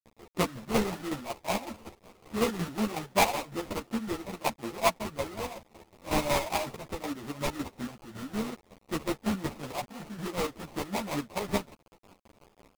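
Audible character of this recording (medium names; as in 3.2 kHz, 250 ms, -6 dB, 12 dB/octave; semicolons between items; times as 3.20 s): a quantiser's noise floor 8-bit, dither none; chopped level 5.4 Hz, depth 65%, duty 45%; aliases and images of a low sample rate 1.6 kHz, jitter 20%; a shimmering, thickened sound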